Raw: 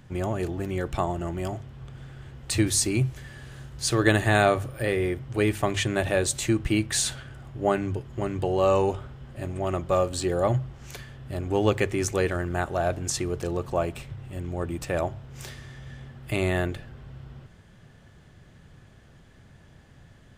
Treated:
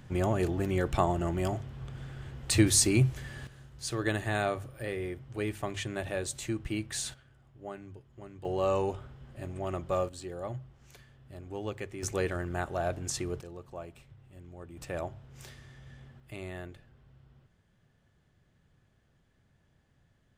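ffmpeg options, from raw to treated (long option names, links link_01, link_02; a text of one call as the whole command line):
ffmpeg -i in.wav -af "asetnsamples=nb_out_samples=441:pad=0,asendcmd='3.47 volume volume -10dB;7.14 volume volume -18.5dB;8.45 volume volume -7dB;10.09 volume volume -14.5dB;12.03 volume volume -6dB;13.41 volume volume -16.5dB;14.77 volume volume -9dB;16.2 volume volume -16dB',volume=0dB" out.wav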